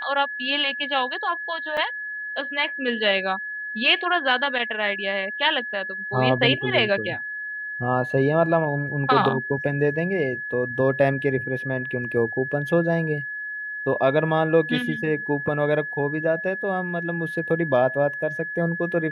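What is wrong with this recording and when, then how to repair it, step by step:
whistle 1,700 Hz −29 dBFS
0:01.77: drop-out 3.9 ms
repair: notch filter 1,700 Hz, Q 30
repair the gap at 0:01.77, 3.9 ms

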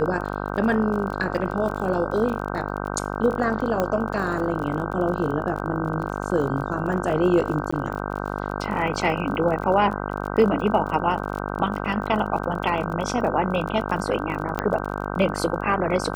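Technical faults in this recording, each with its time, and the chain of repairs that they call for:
mains buzz 50 Hz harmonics 31 −29 dBFS
surface crackle 35 per second −31 dBFS
0:03.80: click −10 dBFS
0:07.71–0:07.72: drop-out 15 ms
0:14.59: click −9 dBFS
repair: click removal
hum removal 50 Hz, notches 31
repair the gap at 0:07.71, 15 ms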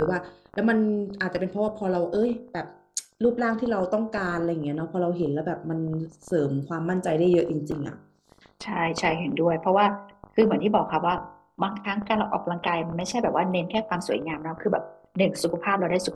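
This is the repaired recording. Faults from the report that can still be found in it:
none of them is left

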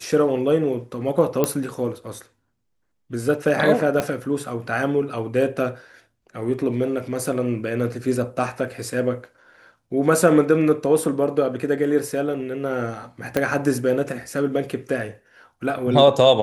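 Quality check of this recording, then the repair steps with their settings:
0:01.44: click −5 dBFS
0:04.00: click −8 dBFS
0:13.37: click −7 dBFS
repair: click removal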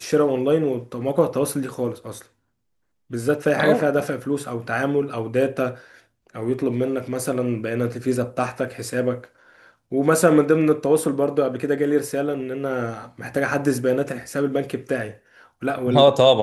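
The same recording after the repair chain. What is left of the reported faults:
0:04.00: click
0:13.37: click

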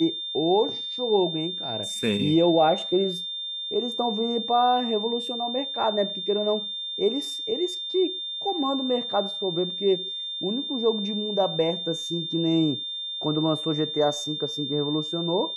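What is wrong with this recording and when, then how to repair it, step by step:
whistle 3,600 Hz −30 dBFS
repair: notch filter 3,600 Hz, Q 30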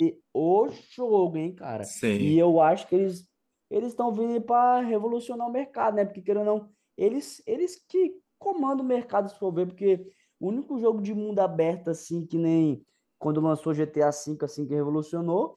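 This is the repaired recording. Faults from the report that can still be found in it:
none of them is left

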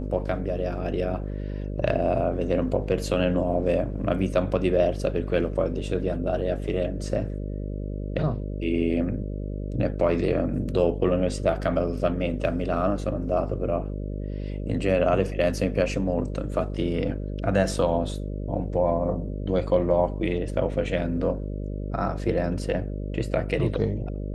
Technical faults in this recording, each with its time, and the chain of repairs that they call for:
mains buzz 50 Hz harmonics 12 −31 dBFS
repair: hum removal 50 Hz, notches 12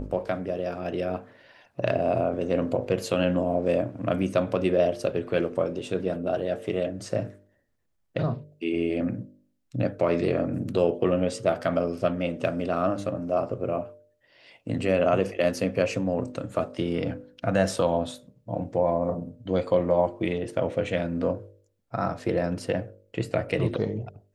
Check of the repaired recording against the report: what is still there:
none of them is left

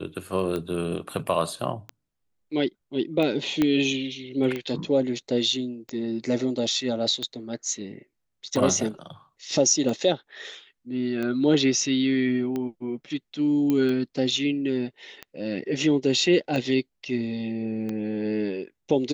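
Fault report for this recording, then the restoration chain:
scratch tick 45 rpm −18 dBFS
0:03.62: click −10 dBFS
0:13.70: click −13 dBFS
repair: click removal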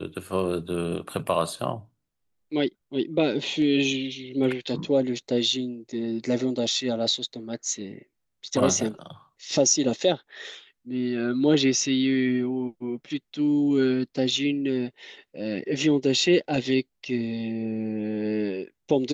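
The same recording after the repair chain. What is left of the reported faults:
0:03.62: click

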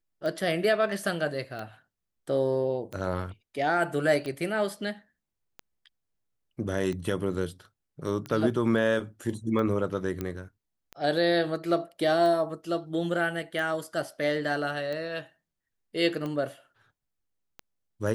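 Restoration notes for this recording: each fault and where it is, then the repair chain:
scratch tick 45 rpm −23 dBFS
0:10.21: click −18 dBFS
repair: click removal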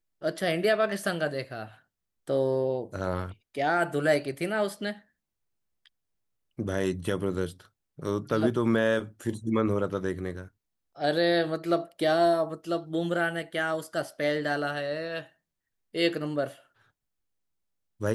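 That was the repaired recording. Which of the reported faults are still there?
none of them is left

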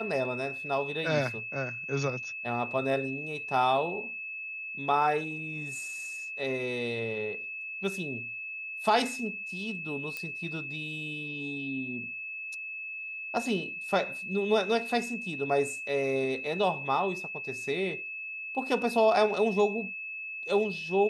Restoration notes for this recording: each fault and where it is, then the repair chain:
whistle 2,600 Hz −36 dBFS
0:10.17: click −21 dBFS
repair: click removal
notch filter 2,600 Hz, Q 30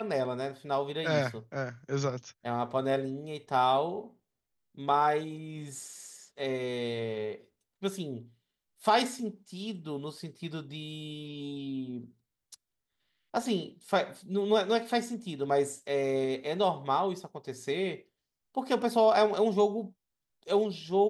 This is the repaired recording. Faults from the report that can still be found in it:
none of them is left

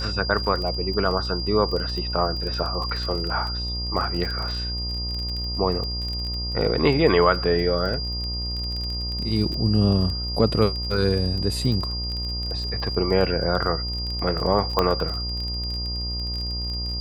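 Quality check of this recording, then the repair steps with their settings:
mains buzz 60 Hz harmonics 22 −30 dBFS
surface crackle 23 per second −28 dBFS
whistle 4,800 Hz −29 dBFS
0:14.79: click −7 dBFS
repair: click removal
hum removal 60 Hz, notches 22
notch filter 4,800 Hz, Q 30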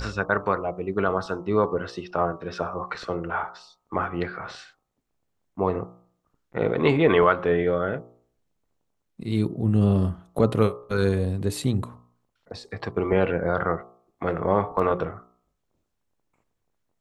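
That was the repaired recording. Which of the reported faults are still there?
0:14.79: click

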